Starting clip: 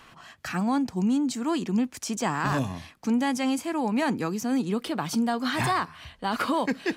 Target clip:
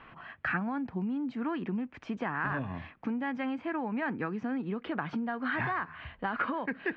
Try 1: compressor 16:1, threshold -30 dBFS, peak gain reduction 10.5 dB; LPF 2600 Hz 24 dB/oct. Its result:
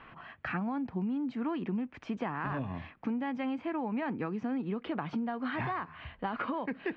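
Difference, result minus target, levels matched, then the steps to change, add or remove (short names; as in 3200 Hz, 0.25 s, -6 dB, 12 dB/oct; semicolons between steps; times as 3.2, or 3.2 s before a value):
2000 Hz band -5.0 dB
add after LPF: dynamic EQ 1600 Hz, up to +8 dB, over -53 dBFS, Q 2.3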